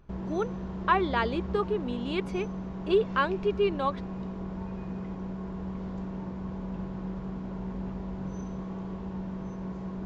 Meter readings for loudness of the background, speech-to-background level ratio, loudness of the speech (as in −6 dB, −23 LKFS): −37.0 LKFS, 7.5 dB, −29.5 LKFS